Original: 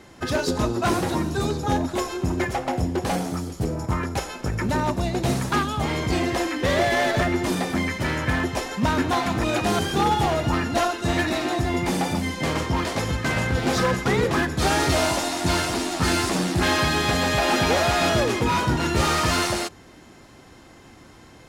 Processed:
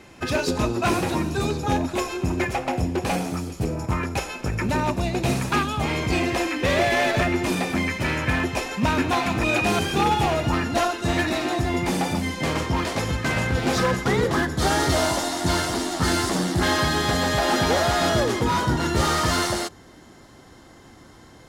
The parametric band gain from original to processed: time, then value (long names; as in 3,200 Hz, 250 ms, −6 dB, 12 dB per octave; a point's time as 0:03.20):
parametric band 2,500 Hz 0.2 octaves
0:10.19 +9.5 dB
0:10.63 +2 dB
0:13.77 +2 dB
0:14.36 −9.5 dB